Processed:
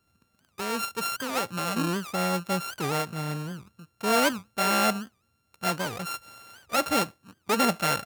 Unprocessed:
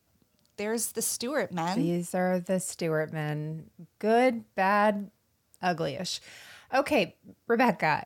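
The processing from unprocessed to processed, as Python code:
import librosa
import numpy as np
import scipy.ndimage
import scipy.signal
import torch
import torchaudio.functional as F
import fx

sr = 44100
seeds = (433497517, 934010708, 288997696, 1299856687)

y = np.r_[np.sort(x[:len(x) // 32 * 32].reshape(-1, 32), axis=1).ravel(), x[len(x) // 32 * 32:]]
y = fx.record_warp(y, sr, rpm=78.0, depth_cents=250.0)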